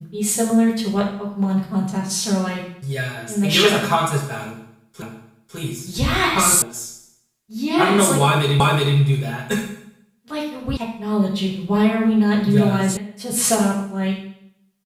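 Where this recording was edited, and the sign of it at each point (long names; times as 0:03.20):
0:05.02: the same again, the last 0.55 s
0:06.62: cut off before it has died away
0:08.60: the same again, the last 0.37 s
0:10.77: cut off before it has died away
0:12.97: cut off before it has died away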